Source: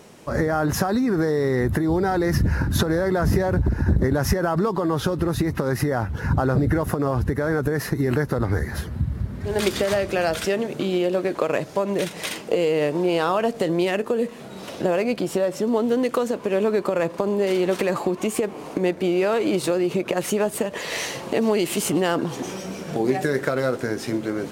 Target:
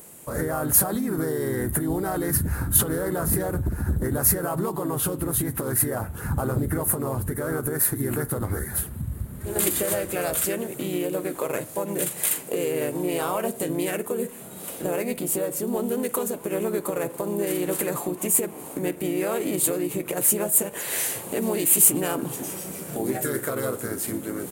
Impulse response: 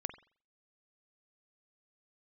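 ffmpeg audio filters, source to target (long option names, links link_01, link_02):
-filter_complex "[0:a]asplit=2[link_01][link_02];[link_02]asetrate=37084,aresample=44100,atempo=1.18921,volume=-4dB[link_03];[link_01][link_03]amix=inputs=2:normalize=0,acontrast=25,aexciter=amount=14.3:drive=3.1:freq=7800,asplit=2[link_04][link_05];[1:a]atrim=start_sample=2205[link_06];[link_05][link_06]afir=irnorm=-1:irlink=0,volume=-4.5dB[link_07];[link_04][link_07]amix=inputs=2:normalize=0,volume=-15dB"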